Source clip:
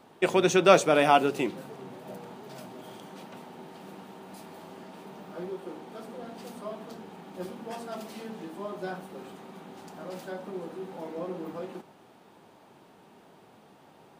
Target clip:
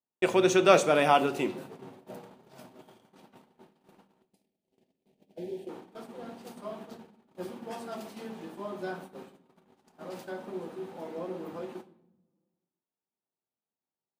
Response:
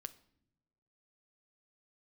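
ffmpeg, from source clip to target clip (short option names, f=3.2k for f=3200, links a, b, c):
-filter_complex "[0:a]asettb=1/sr,asplit=3[a][b][c];[a]atrim=end=4.224[d];[b]atrim=start=4.22:end=5.69,asetpts=PTS-STARTPTS,afade=t=in:d=0.004:c=qsin,afade=t=out:st=1.466:d=0.004:c=qsin,asuperstop=centerf=1200:order=4:qfactor=0.82[e];[c]atrim=start=5.686[f];[d][e]acrossfade=d=0.004:c1=hsin:c2=qsin[g];[g][f]acrossfade=d=0.004:c1=qsin:c2=hsin,agate=range=-42dB:threshold=-42dB:ratio=16:detection=peak[h];[1:a]atrim=start_sample=2205,asetrate=36603,aresample=44100[i];[h][i]afir=irnorm=-1:irlink=0,volume=2dB"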